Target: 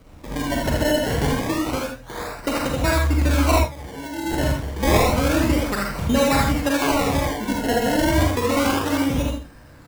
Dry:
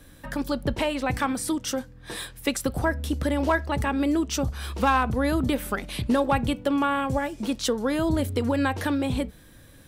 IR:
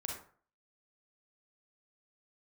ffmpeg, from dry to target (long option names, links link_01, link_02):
-filter_complex "[0:a]aecho=1:1:79|158|237:0.668|0.14|0.0295,asplit=3[link_01][link_02][link_03];[link_01]afade=type=out:start_time=3.58:duration=0.02[link_04];[link_02]agate=range=-33dB:threshold=-13dB:ratio=3:detection=peak,afade=type=in:start_time=3.58:duration=0.02,afade=type=out:start_time=4.25:duration=0.02[link_05];[link_03]afade=type=in:start_time=4.25:duration=0.02[link_06];[link_04][link_05][link_06]amix=inputs=3:normalize=0,acrusher=samples=25:mix=1:aa=0.000001:lfo=1:lforange=25:lforate=0.29[link_07];[1:a]atrim=start_sample=2205,atrim=end_sample=4410[link_08];[link_07][link_08]afir=irnorm=-1:irlink=0,volume=4dB"